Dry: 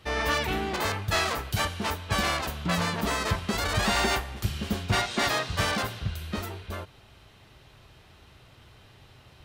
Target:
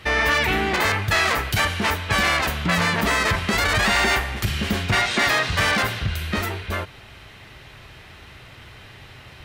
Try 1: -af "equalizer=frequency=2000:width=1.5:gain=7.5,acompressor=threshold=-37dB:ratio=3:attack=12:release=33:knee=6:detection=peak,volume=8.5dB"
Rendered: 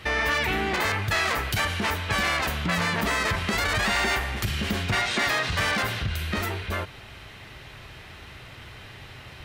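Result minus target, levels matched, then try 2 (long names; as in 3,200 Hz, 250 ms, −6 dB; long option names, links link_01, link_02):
downward compressor: peak gain reduction +5 dB
-af "equalizer=frequency=2000:width=1.5:gain=7.5,acompressor=threshold=-29.5dB:ratio=3:attack=12:release=33:knee=6:detection=peak,volume=8.5dB"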